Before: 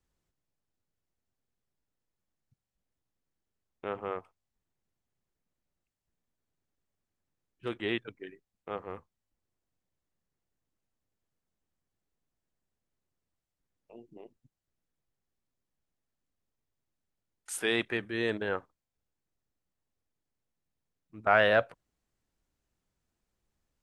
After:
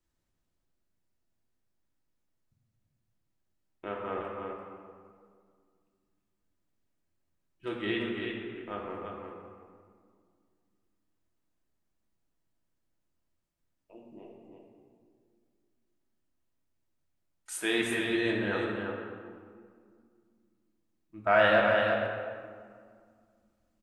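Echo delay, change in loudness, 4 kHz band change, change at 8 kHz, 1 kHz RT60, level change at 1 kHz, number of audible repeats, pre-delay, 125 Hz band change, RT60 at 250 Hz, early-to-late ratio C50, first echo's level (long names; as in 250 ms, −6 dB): 339 ms, +0.5 dB, +2.0 dB, +1.0 dB, 1.9 s, +2.5 dB, 1, 3 ms, +3.0 dB, 2.9 s, −0.5 dB, −4.5 dB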